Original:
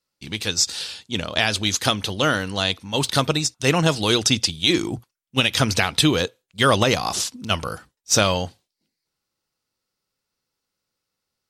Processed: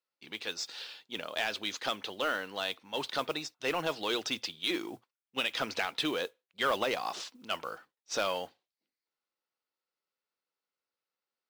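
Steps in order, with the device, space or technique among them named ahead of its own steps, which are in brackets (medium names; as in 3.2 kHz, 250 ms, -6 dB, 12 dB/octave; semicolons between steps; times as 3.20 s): carbon microphone (band-pass 390–3400 Hz; saturation -12 dBFS, distortion -15 dB; modulation noise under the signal 23 dB); trim -8.5 dB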